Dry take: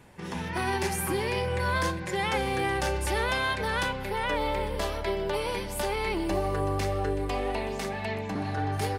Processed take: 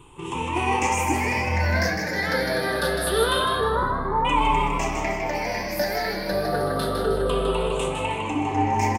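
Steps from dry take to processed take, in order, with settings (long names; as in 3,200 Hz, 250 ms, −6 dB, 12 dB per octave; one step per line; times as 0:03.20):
rippled gain that drifts along the octave scale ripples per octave 0.66, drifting −0.26 Hz, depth 21 dB
0:03.44–0:04.25: Butterworth low-pass 1,900 Hz 96 dB per octave
echo with shifted repeats 156 ms, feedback 38%, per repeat +120 Hz, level −5.5 dB
on a send at −7 dB: convolution reverb, pre-delay 3 ms
on the sum: flanger 1.8 Hz, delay 2.6 ms, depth 4.2 ms, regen −69%
level +4 dB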